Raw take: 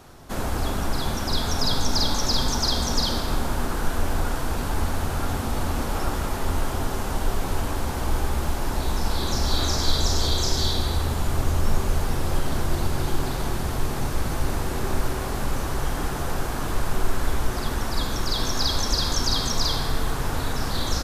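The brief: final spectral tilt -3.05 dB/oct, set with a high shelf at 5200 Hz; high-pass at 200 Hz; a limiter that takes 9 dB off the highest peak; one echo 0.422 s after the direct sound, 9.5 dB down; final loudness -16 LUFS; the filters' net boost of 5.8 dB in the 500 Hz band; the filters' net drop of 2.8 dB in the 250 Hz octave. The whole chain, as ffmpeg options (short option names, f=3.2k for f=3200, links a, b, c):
-af "highpass=200,equalizer=f=250:t=o:g=-5,equalizer=f=500:t=o:g=9,highshelf=f=5.2k:g=4.5,alimiter=limit=-18.5dB:level=0:latency=1,aecho=1:1:422:0.335,volume=11.5dB"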